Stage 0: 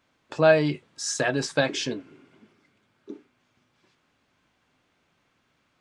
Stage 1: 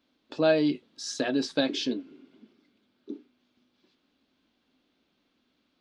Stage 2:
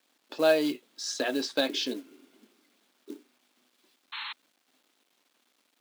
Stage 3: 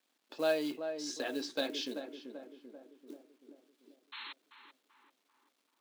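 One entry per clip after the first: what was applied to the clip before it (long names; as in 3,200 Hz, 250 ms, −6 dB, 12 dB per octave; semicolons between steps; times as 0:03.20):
octave-band graphic EQ 125/250/1,000/2,000/4,000/8,000 Hz −12/+11/−4/−5/+9/−10 dB; level −4.5 dB
log-companded quantiser 6 bits; Bessel high-pass filter 410 Hz, order 2; sound drawn into the spectrogram noise, 0:04.12–0:04.33, 820–4,300 Hz −39 dBFS; level +1.5 dB
tape delay 388 ms, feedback 61%, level −6 dB, low-pass 1,200 Hz; level −8 dB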